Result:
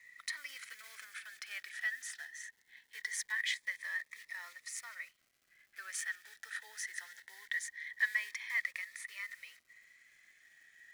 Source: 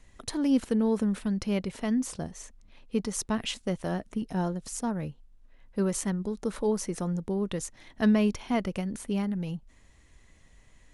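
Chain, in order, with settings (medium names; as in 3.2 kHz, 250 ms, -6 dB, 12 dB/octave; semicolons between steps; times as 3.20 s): block-companded coder 5-bit; treble shelf 4.5 kHz -7 dB; band-stop 2.8 kHz, Q 7.2; in parallel at +1 dB: peak limiter -24 dBFS, peak gain reduction 10 dB; on the sum: ladder high-pass 1.8 kHz, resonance 85%; crackle 460 per s -65 dBFS; Shepard-style phaser rising 0.22 Hz; trim +5 dB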